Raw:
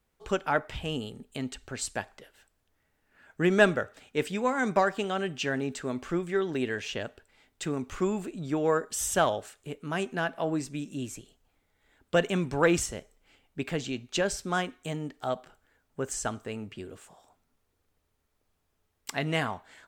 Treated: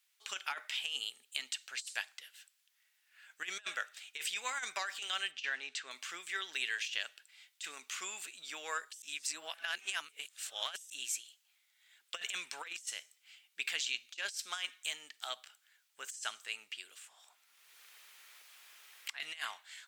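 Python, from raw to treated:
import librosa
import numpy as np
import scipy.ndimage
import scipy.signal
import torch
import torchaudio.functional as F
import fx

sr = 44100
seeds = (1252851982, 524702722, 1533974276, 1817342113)

y = fx.air_absorb(x, sr, metres=110.0, at=(5.31, 5.91))
y = fx.band_squash(y, sr, depth_pct=100, at=(16.91, 19.2))
y = fx.edit(y, sr, fx.reverse_span(start_s=9.02, length_s=1.88), tone=tone)
y = scipy.signal.sosfilt(scipy.signal.cheby1(2, 1.0, 2900.0, 'highpass', fs=sr, output='sos'), y)
y = fx.over_compress(y, sr, threshold_db=-42.0, ratio=-0.5)
y = y * librosa.db_to_amplitude(4.0)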